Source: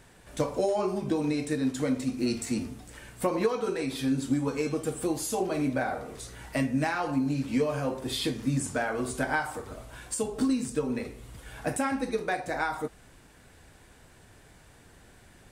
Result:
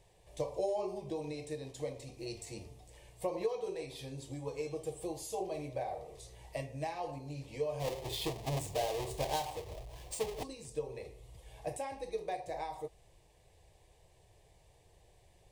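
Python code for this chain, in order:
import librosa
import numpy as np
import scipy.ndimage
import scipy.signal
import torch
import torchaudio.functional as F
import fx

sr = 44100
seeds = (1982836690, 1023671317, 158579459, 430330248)

y = fx.halfwave_hold(x, sr, at=(7.79, 10.42), fade=0.02)
y = fx.high_shelf(y, sr, hz=5400.0, db=-7.0)
y = fx.fixed_phaser(y, sr, hz=590.0, stages=4)
y = F.gain(torch.from_numpy(y), -6.0).numpy()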